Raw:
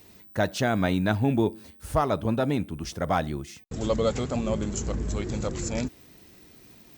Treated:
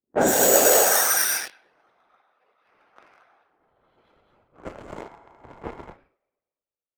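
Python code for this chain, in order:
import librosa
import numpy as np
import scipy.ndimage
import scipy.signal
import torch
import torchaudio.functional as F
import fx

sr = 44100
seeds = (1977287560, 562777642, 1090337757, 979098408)

p1 = fx.spec_dilate(x, sr, span_ms=480)
p2 = fx.chorus_voices(p1, sr, voices=4, hz=1.4, base_ms=21, depth_ms=3.2, mix_pct=45)
p3 = fx.comb_fb(p2, sr, f0_hz=260.0, decay_s=0.3, harmonics='all', damping=0.0, mix_pct=90)
p4 = p3 + fx.echo_bbd(p3, sr, ms=227, stages=4096, feedback_pct=76, wet_db=-5.5, dry=0)
p5 = fx.filter_sweep_highpass(p4, sr, from_hz=210.0, to_hz=2800.0, start_s=0.29, end_s=1.54, q=1.9)
p6 = fx.whisperise(p5, sr, seeds[0])
p7 = (np.kron(p6[::6], np.eye(6)[0]) * 6)[:len(p6)]
p8 = fx.spec_repair(p7, sr, seeds[1], start_s=5.05, length_s=0.86, low_hz=650.0, high_hz=9600.0, source='before')
p9 = fx.env_lowpass(p8, sr, base_hz=530.0, full_db=-21.5)
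p10 = fx.fuzz(p9, sr, gain_db=37.0, gate_db=-38.0)
p11 = p9 + F.gain(torch.from_numpy(p10), -8.0).numpy()
p12 = fx.peak_eq(p11, sr, hz=500.0, db=8.5, octaves=2.4)
p13 = fx.band_widen(p12, sr, depth_pct=70)
y = F.gain(torch.from_numpy(p13), -5.5).numpy()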